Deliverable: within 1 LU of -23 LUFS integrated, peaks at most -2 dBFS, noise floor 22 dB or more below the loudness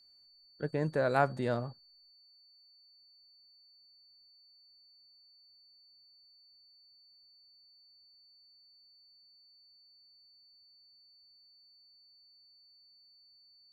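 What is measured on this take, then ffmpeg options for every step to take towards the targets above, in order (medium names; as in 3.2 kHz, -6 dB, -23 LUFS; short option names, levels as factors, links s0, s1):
steady tone 4.5 kHz; tone level -60 dBFS; loudness -32.5 LUFS; peak level -12.5 dBFS; loudness target -23.0 LUFS
-> -af "bandreject=f=4500:w=30"
-af "volume=2.99"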